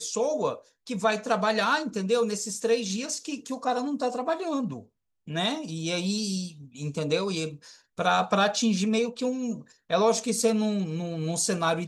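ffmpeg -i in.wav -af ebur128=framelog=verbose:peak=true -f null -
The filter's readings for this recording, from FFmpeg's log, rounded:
Integrated loudness:
  I:         -27.3 LUFS
  Threshold: -37.6 LUFS
Loudness range:
  LRA:         4.7 LU
  Threshold: -47.8 LUFS
  LRA low:   -30.4 LUFS
  LRA high:  -25.7 LUFS
True peak:
  Peak:      -10.5 dBFS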